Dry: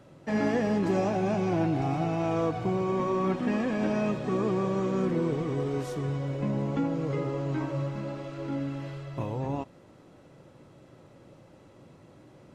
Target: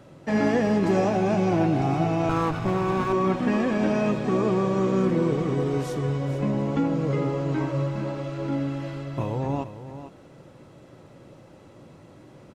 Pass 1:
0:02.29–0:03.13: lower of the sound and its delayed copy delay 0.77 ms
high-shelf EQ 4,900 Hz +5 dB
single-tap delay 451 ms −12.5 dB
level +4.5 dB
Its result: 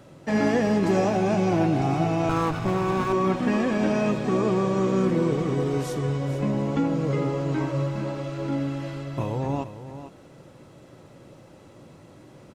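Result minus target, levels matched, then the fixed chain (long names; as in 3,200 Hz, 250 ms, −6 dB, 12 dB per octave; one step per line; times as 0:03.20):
8,000 Hz band +3.0 dB
0:02.29–0:03.13: lower of the sound and its delayed copy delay 0.77 ms
single-tap delay 451 ms −12.5 dB
level +4.5 dB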